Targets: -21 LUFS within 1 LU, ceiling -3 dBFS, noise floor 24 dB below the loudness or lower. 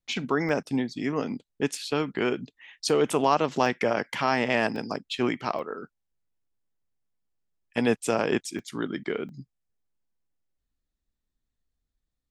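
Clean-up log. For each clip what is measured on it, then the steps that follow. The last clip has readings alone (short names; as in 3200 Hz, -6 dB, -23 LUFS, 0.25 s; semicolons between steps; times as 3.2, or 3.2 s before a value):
dropouts 8; longest dropout 1.3 ms; loudness -27.5 LUFS; peak -8.5 dBFS; loudness target -21.0 LUFS
-> interpolate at 0.49/1.75/2.9/3.66/4.76/5.59/8.59/9.29, 1.3 ms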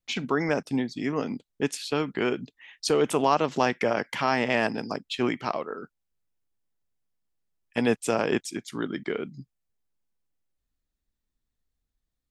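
dropouts 0; loudness -27.5 LUFS; peak -8.5 dBFS; loudness target -21.0 LUFS
-> gain +6.5 dB; limiter -3 dBFS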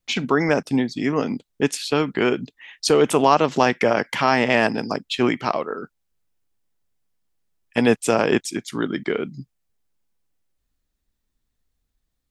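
loudness -21.0 LUFS; peak -3.0 dBFS; noise floor -76 dBFS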